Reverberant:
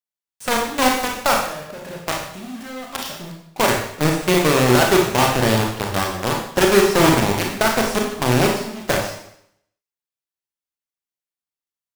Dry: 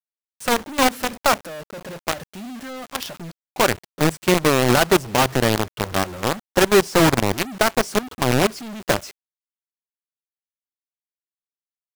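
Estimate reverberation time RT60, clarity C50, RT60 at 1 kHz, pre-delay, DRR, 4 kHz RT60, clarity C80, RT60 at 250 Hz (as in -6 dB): 0.70 s, 3.0 dB, 0.70 s, 29 ms, 0.0 dB, 0.70 s, 7.0 dB, 0.75 s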